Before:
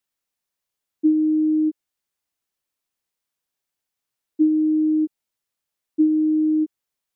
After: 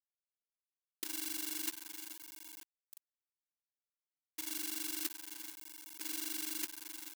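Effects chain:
granular cloud 45 ms, grains 24 per second, spray 20 ms, pitch spread up and down by 0 semitones
feedback echo with a high-pass in the loop 468 ms, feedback 38%, high-pass 310 Hz, level −24 dB
compressor whose output falls as the input rises −29 dBFS, ratio −1
dynamic equaliser 300 Hz, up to −7 dB, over −44 dBFS, Q 1.6
log-companded quantiser 4 bits
first difference
level +12 dB

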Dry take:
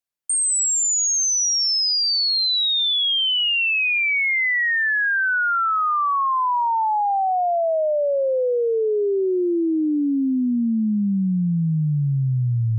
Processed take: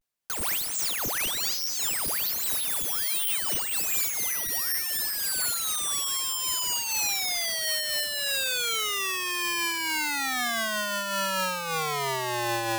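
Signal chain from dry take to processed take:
pitch vibrato 0.63 Hz 92 cents
wrap-around overflow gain 25 dB
amplitude modulation by smooth noise, depth 60%
level +6 dB

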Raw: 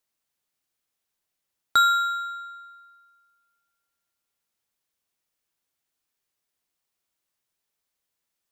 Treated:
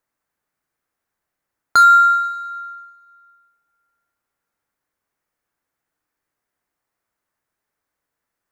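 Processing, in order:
high shelf with overshoot 2,300 Hz −9 dB, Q 1.5
wave folding −13 dBFS
convolution reverb RT60 2.0 s, pre-delay 3 ms, DRR 10 dB
level +6.5 dB

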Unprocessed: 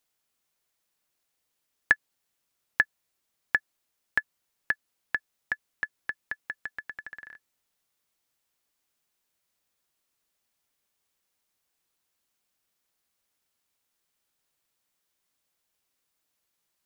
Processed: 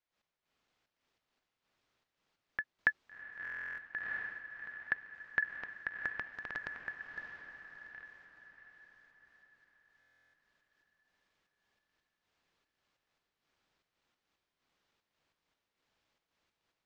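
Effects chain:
slices reordered back to front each 226 ms, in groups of 4
gate pattern ".x..xxxx.xx" 140 BPM −12 dB
transient designer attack −10 dB, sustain +3 dB
high-frequency loss of the air 180 metres
feedback delay with all-pass diffusion 688 ms, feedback 46%, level −7 dB
buffer that repeats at 0:03.43/0:09.99, samples 1,024, times 14
level +6.5 dB

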